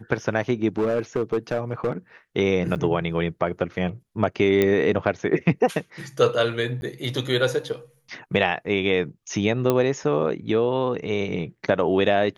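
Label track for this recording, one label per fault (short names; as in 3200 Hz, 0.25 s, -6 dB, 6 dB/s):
0.690000	1.920000	clipped -17.5 dBFS
2.750000	2.760000	gap 8.6 ms
4.620000	4.620000	pop -8 dBFS
6.810000	6.820000	gap 11 ms
9.700000	9.700000	pop -8 dBFS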